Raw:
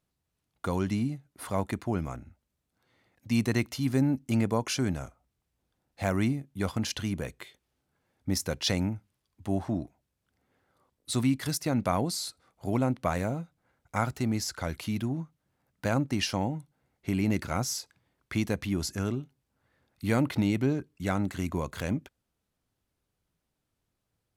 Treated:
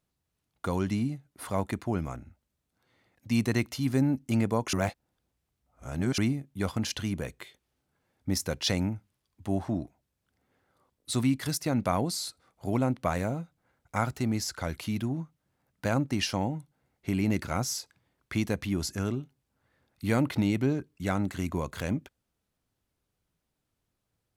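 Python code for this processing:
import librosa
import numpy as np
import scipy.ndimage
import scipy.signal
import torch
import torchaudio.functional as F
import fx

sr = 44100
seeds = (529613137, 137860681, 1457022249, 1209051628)

y = fx.edit(x, sr, fx.reverse_span(start_s=4.73, length_s=1.45), tone=tone)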